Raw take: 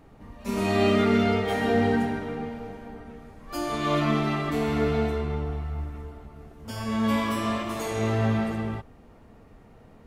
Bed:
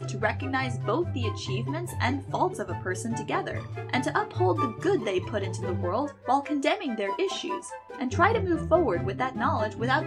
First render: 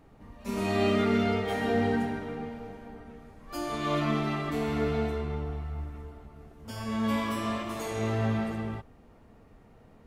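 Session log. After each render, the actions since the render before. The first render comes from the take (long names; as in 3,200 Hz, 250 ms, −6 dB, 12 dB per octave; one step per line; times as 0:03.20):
level −4 dB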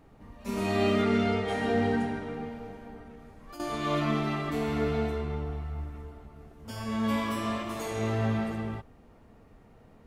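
0:01.02–0:02.34: Butterworth low-pass 11,000 Hz
0:03.05–0:03.60: downward compressor, threshold −42 dBFS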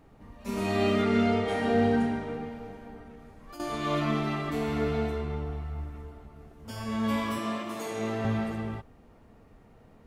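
0:01.12–0:02.37: flutter between parallel walls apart 6.6 metres, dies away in 0.27 s
0:07.38–0:08.25: Chebyshev high-pass filter 190 Hz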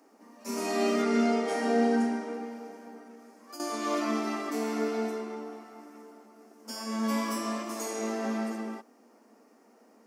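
Chebyshev high-pass filter 220 Hz, order 6
high shelf with overshoot 4,400 Hz +6 dB, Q 3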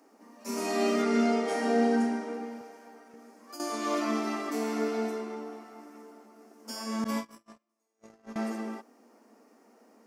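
0:02.61–0:03.14: high-pass filter 590 Hz 6 dB per octave
0:07.04–0:08.36: noise gate −29 dBFS, range −47 dB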